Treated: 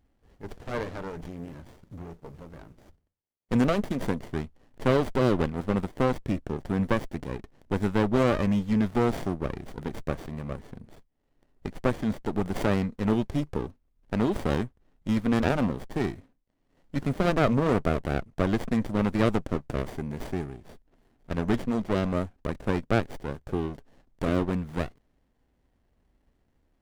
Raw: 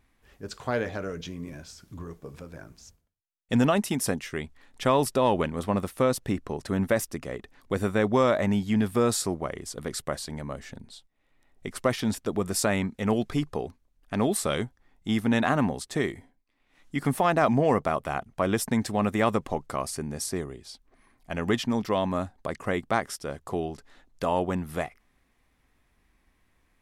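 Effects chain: running maximum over 33 samples

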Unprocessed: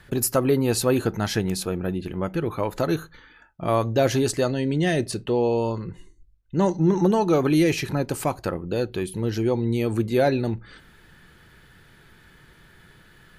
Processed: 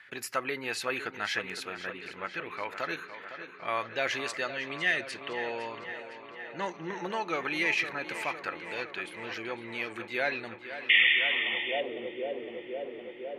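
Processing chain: painted sound noise, 10.89–11.81, 1800–3600 Hz -22 dBFS; tape echo 0.509 s, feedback 82%, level -10 dB, low-pass 4300 Hz; band-pass sweep 2100 Hz -> 500 Hz, 10.93–11.95; gain +5.5 dB

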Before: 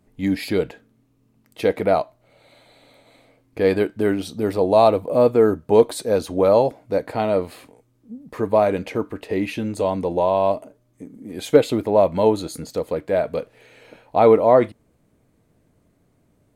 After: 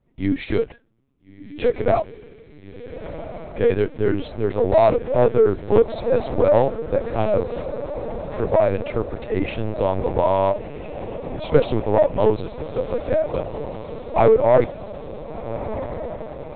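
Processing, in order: sample leveller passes 1; diffused feedback echo 1.385 s, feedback 67%, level -12 dB; LPC vocoder at 8 kHz pitch kept; gain -3.5 dB

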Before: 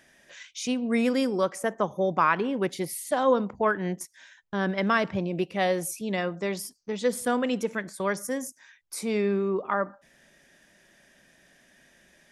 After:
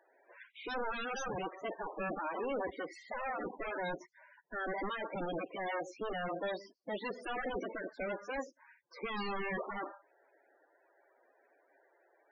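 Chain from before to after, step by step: spectral limiter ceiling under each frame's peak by 18 dB; LPF 1700 Hz 6 dB/oct; 0.84–1.44 notch 1200 Hz, Q 27; HPF 300 Hz 12 dB/oct; limiter -21.5 dBFS, peak gain reduction 10.5 dB; 2.19–2.7 sample leveller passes 5; wavefolder -33 dBFS; loudest bins only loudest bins 16; gain +3.5 dB

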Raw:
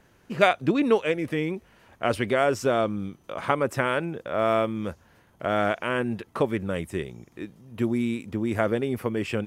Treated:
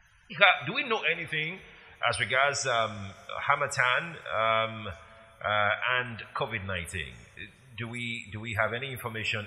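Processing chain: passive tone stack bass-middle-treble 10-0-10; loudest bins only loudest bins 64; two-slope reverb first 0.55 s, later 3.6 s, from -16 dB, DRR 11.5 dB; gain +9 dB

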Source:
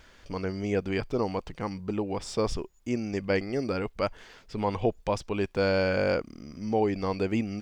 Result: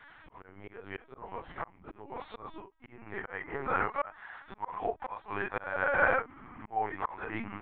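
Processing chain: phase scrambler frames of 0.1 s; LPC vocoder at 8 kHz pitch kept; band shelf 1200 Hz +9 dB, from 2.75 s +15.5 dB; auto swell 0.469 s; low shelf 350 Hz -6 dB; gain -3.5 dB

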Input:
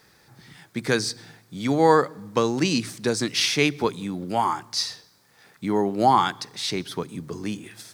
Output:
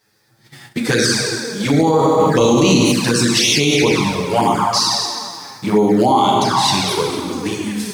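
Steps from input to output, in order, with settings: high shelf 4200 Hz +4.5 dB; plate-style reverb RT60 2.3 s, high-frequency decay 0.75×, DRR -2 dB; 2.19–2.92 sample leveller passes 1; envelope flanger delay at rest 9.8 ms, full sweep at -14 dBFS; gate -46 dBFS, range -15 dB; maximiser +14 dB; gain -4 dB

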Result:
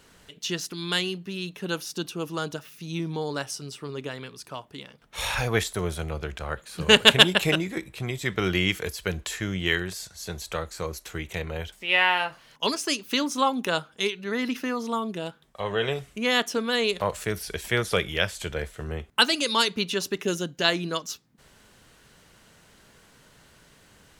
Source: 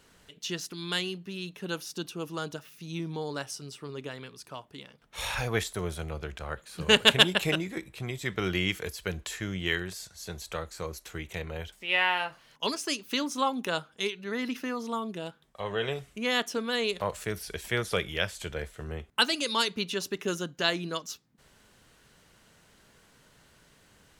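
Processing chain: 20.23–20.65 bell 1200 Hz -6.5 dB 0.77 oct; gain +4.5 dB

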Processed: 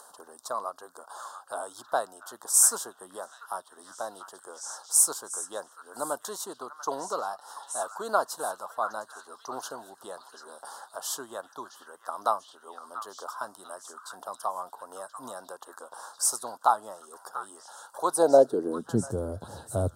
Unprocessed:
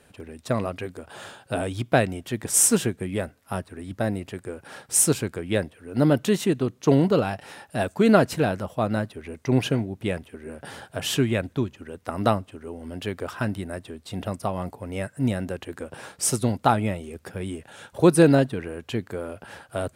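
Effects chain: high-pass sweep 1100 Hz -> 82 Hz, 18.06–19.24; delay with a stepping band-pass 0.691 s, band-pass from 1700 Hz, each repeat 0.7 oct, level -6.5 dB; in parallel at +1.5 dB: upward compressor, threshold -28 dBFS; on the sum: Butterworth band-stop 2300 Hz, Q 0.58; gain -7.5 dB

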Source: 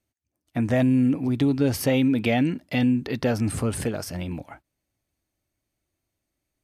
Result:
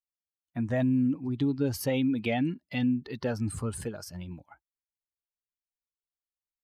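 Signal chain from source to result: per-bin expansion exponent 1.5; gain -4.5 dB

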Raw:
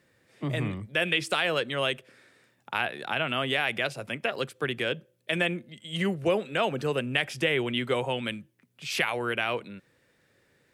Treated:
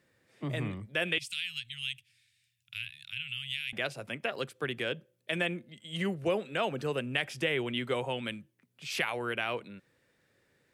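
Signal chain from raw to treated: 1.18–3.73 elliptic band-stop 110–2600 Hz, stop band 80 dB; gain -4.5 dB

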